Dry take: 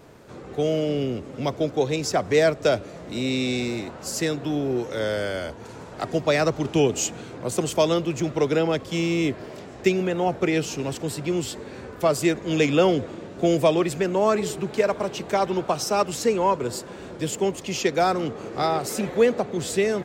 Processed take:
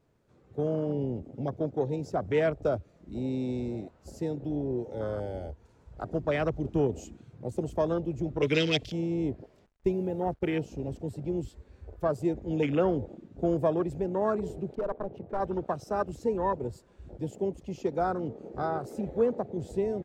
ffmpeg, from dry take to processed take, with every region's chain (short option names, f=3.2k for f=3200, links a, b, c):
-filter_complex "[0:a]asettb=1/sr,asplit=3[a][b][c];[a]atrim=end=8.424[d];[b]atrim=start=8.42:end=8.92,asetpts=PTS-STARTPTS,afade=t=in:d=0.004:c=qsin,afade=t=out:st=0.496:d=0.004:c=qsin,asuperstop=centerf=790:order=20:qfactor=2.7,highshelf=f=1.8k:t=q:w=1.5:g=11.5,aecho=1:1:6.7:0.6,atrim=end_sample=22050[e];[c]atrim=start=8.916[f];[d][e]acrossfade=d=0.004:c1=hsin:c2=qsin[g];[g][f]acrossfade=d=0.004:c1=qsin:c2=hsin,asettb=1/sr,asplit=3[h][i][j];[h]atrim=end=9.664[k];[i]atrim=start=9.66:end=10.56,asetpts=PTS-STARTPTS,afade=t=in:d=0.004:c=qsin,afade=t=out:st=0.896:d=0.004:c=qsin,agate=range=-10dB:threshold=-29dB:ratio=16:release=100:detection=peak,acrusher=bits=6:mix=0:aa=0.5[l];[j]atrim=start=10.556[m];[k][l]acrossfade=d=0.004:c1=hsin:c2=qsin[n];[n][m]acrossfade=d=0.004:c1=qsin:c2=hsin,asettb=1/sr,asplit=3[o][p][q];[o]atrim=end=14.754[r];[p]atrim=start=14.75:end=15.4,asetpts=PTS-STARTPTS,afade=t=in:d=0.004:c=qsin,afade=t=out:st=0.646:d=0.004:c=qsin,bandreject=f=60:t=h:w=6,bandreject=f=120:t=h:w=6,bandreject=f=180:t=h:w=6,bandreject=f=240:t=h:w=6,bandreject=f=300:t=h:w=6,bandreject=f=360:t=h:w=6,adynamicsmooth=sensitivity=2:basefreq=1.4k,asoftclip=type=hard:threshold=-20dB[s];[q]atrim=start=15.396[t];[r][s]acrossfade=d=0.004:c1=hsin:c2=qsin[u];[u][t]acrossfade=d=0.004:c1=qsin:c2=hsin,asubboost=boost=4:cutoff=60,afwtdn=0.0501,lowshelf=f=190:g=9.5,volume=-8dB"